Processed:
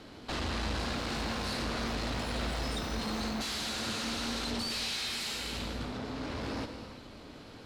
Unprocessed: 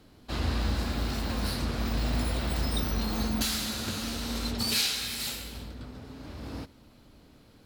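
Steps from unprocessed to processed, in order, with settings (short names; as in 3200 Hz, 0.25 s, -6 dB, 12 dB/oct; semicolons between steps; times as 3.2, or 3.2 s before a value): low shelf 210 Hz -10 dB; in parallel at +2 dB: compressor, threshold -42 dBFS, peak gain reduction 17.5 dB; on the sum: tube stage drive 38 dB, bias 0.55; air absorption 59 m; non-linear reverb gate 0.37 s flat, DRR 6.5 dB; gain +6 dB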